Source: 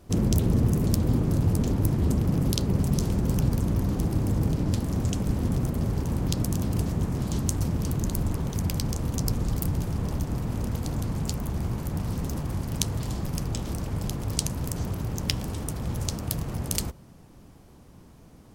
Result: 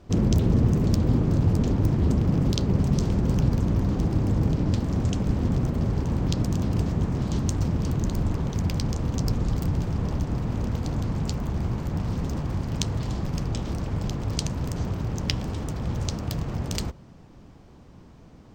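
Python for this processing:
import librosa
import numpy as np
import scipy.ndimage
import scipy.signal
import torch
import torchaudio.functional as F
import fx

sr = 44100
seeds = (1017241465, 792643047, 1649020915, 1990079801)

y = np.convolve(x, np.full(4, 1.0 / 4))[:len(x)]
y = y * librosa.db_to_amplitude(2.0)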